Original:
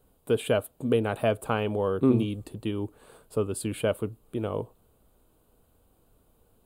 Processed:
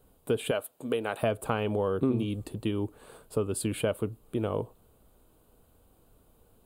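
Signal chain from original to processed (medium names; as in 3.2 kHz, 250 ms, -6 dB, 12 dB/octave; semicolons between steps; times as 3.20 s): 0.51–1.23 s: high-pass 620 Hz 6 dB/octave; compression 3:1, threshold -27 dBFS, peak gain reduction 8.5 dB; trim +2 dB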